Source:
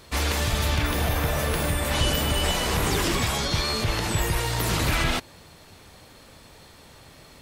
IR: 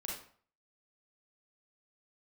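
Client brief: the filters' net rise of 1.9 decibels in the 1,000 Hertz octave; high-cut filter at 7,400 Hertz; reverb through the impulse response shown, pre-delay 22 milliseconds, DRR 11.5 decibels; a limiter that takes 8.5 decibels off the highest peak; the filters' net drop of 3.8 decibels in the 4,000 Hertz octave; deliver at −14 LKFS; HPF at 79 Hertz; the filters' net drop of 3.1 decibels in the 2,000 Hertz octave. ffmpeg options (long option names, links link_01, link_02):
-filter_complex "[0:a]highpass=79,lowpass=7400,equalizer=frequency=1000:width_type=o:gain=3.5,equalizer=frequency=2000:width_type=o:gain=-4,equalizer=frequency=4000:width_type=o:gain=-3.5,alimiter=limit=-21.5dB:level=0:latency=1,asplit=2[link_01][link_02];[1:a]atrim=start_sample=2205,adelay=22[link_03];[link_02][link_03]afir=irnorm=-1:irlink=0,volume=-11.5dB[link_04];[link_01][link_04]amix=inputs=2:normalize=0,volume=16.5dB"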